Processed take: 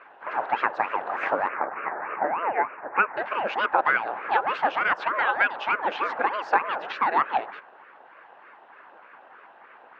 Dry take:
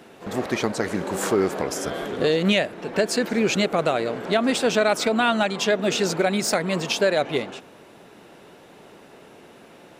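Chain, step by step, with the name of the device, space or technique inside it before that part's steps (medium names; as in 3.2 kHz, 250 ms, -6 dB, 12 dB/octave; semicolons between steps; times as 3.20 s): 1.48–3.17 s: steep low-pass 2.1 kHz 72 dB/octave; harmonic-percussive split percussive +8 dB; resonant high shelf 1.8 kHz -10.5 dB, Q 1.5; voice changer toy (ring modulator with a swept carrier 490 Hz, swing 75%, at 3.3 Hz; cabinet simulation 580–3500 Hz, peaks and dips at 830 Hz +6 dB, 1.6 kHz +6 dB, 2.7 kHz +8 dB); trim -4.5 dB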